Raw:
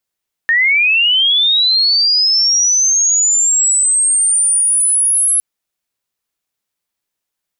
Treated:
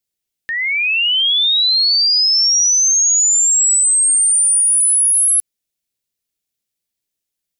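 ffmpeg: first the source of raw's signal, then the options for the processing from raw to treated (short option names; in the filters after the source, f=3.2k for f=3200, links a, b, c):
-f lavfi -i "aevalsrc='pow(10,(-9-1*t/4.91)/20)*sin(2*PI*(1800*t+9200*t*t/(2*4.91)))':d=4.91:s=44100"
-filter_complex "[0:a]acrossover=split=1400[a][b];[a]acompressor=threshold=-39dB:ratio=6[c];[c][b]amix=inputs=2:normalize=0,equalizer=f=1.1k:t=o:w=1.6:g=-13"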